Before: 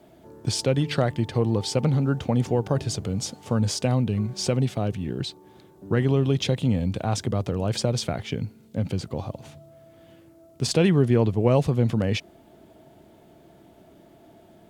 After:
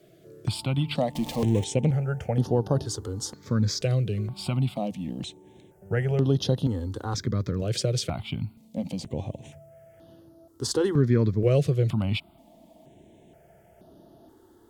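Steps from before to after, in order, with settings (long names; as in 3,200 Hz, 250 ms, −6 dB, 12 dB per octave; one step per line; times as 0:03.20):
0:01.15–0:01.64: converter with a step at zero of −29.5 dBFS
step-sequenced phaser 2.1 Hz 240–7,700 Hz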